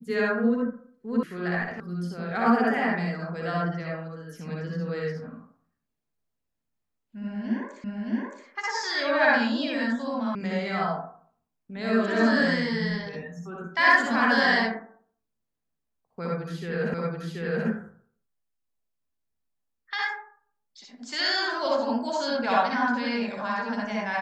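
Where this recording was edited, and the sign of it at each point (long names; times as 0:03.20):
0:01.23: cut off before it has died away
0:01.80: cut off before it has died away
0:07.84: the same again, the last 0.62 s
0:10.35: cut off before it has died away
0:16.94: the same again, the last 0.73 s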